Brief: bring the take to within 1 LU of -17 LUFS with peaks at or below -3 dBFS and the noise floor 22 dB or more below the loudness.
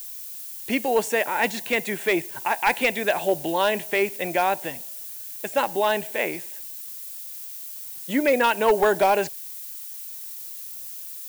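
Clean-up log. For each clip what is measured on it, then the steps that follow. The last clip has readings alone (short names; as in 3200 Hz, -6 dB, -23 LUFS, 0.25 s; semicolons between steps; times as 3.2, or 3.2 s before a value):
clipped 0.3%; flat tops at -12.0 dBFS; noise floor -37 dBFS; noise floor target -47 dBFS; loudness -25.0 LUFS; peak -12.0 dBFS; loudness target -17.0 LUFS
-> clip repair -12 dBFS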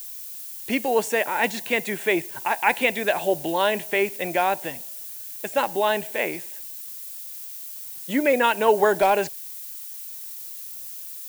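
clipped 0.0%; noise floor -37 dBFS; noise floor target -47 dBFS
-> denoiser 10 dB, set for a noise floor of -37 dBFS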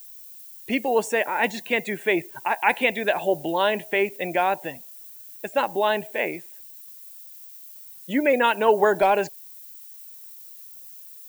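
noise floor -44 dBFS; noise floor target -45 dBFS
-> denoiser 6 dB, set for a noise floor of -44 dBFS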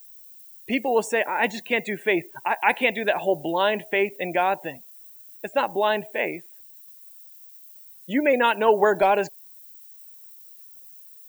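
noise floor -48 dBFS; loudness -23.0 LUFS; peak -5.5 dBFS; loudness target -17.0 LUFS
-> gain +6 dB; limiter -3 dBFS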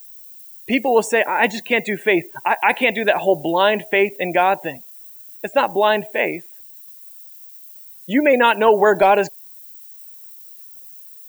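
loudness -17.5 LUFS; peak -3.0 dBFS; noise floor -42 dBFS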